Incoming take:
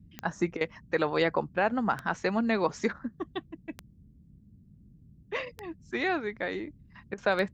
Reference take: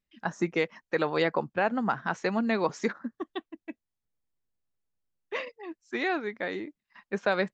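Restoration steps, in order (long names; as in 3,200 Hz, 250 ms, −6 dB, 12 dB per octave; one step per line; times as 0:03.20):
click removal
repair the gap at 0:00.57/0:07.14, 38 ms
noise reduction from a noise print 29 dB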